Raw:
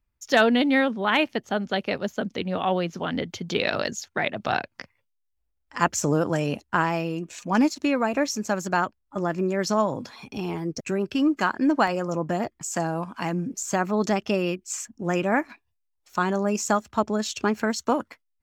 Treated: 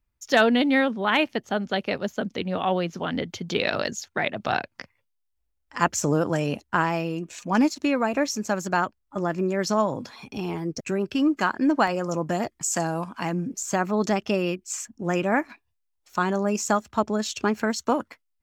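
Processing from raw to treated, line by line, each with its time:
0:12.03–0:13.09: parametric band 8,800 Hz +6 dB 2.5 octaves

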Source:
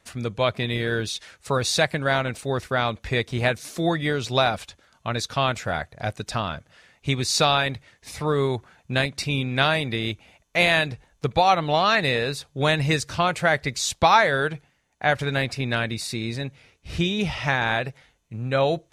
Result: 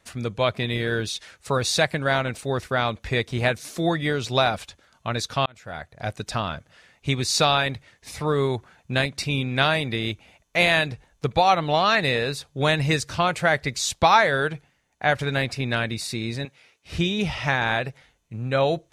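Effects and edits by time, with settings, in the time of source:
0:05.46–0:06.18: fade in
0:16.45–0:16.92: high-pass filter 630 Hz 6 dB per octave

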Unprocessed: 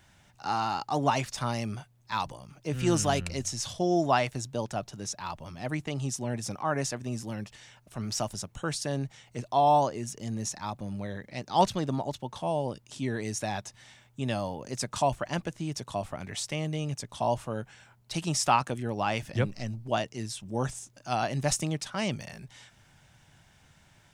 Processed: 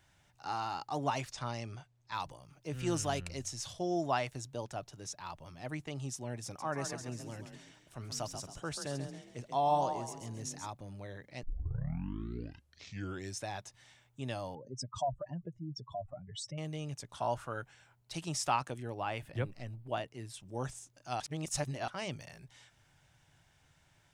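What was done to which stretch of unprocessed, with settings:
0:01.33–0:02.14: low-pass filter 7,900 Hz 24 dB per octave
0:06.45–0:10.68: echo with shifted repeats 136 ms, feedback 37%, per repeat +30 Hz, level −8 dB
0:11.43: tape start 2.04 s
0:14.55–0:16.58: expanding power law on the bin magnitudes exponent 2.8
0:17.13–0:17.62: parametric band 1,400 Hz +14 dB 0.53 octaves
0:18.94–0:20.34: parametric band 5,900 Hz −11.5 dB 0.81 octaves
0:21.20–0:21.88: reverse
whole clip: parametric band 210 Hz −12 dB 0.2 octaves; level −7.5 dB

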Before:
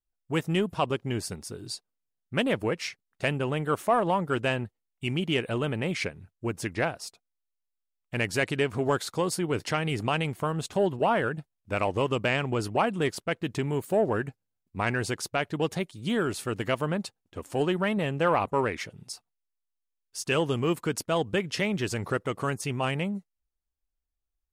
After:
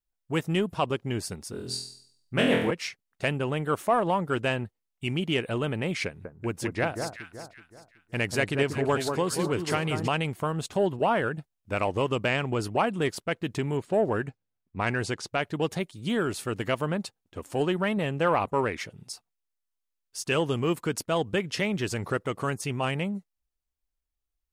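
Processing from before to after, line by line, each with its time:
0:01.51–0:02.71: flutter between parallel walls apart 4.1 metres, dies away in 0.62 s
0:06.06–0:10.08: delay that swaps between a low-pass and a high-pass 188 ms, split 1,400 Hz, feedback 58%, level −5 dB
0:13.77–0:15.28: low-pass that shuts in the quiet parts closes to 2,500 Hz, open at −22 dBFS

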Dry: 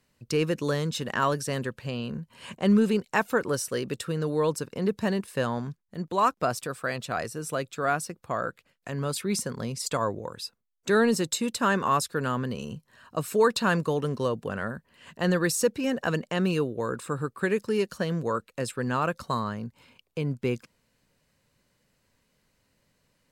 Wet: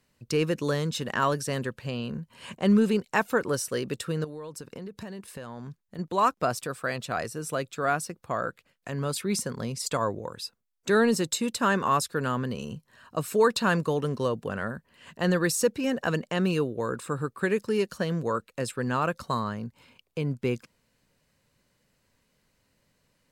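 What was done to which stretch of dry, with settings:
0:04.24–0:05.99: downward compressor 16 to 1, threshold −35 dBFS

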